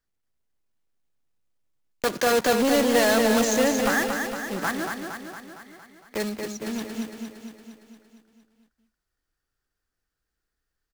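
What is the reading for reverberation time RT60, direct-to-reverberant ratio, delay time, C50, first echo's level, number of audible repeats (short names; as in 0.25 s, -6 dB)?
none, none, 0.23 s, none, -5.5 dB, 7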